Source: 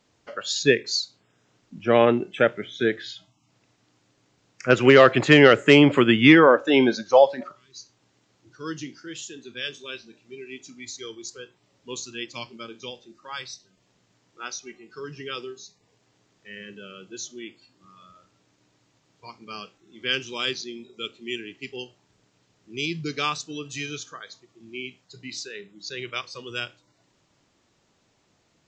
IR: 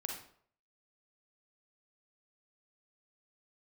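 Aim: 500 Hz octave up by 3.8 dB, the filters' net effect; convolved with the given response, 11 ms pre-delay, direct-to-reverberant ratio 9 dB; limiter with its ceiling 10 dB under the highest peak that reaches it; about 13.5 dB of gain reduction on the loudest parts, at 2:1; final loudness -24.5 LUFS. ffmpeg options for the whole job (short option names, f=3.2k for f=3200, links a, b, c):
-filter_complex "[0:a]equalizer=f=500:t=o:g=4.5,acompressor=threshold=-32dB:ratio=2,alimiter=limit=-21.5dB:level=0:latency=1,asplit=2[a][b];[1:a]atrim=start_sample=2205,adelay=11[c];[b][c]afir=irnorm=-1:irlink=0,volume=-9dB[d];[a][d]amix=inputs=2:normalize=0,volume=10.5dB"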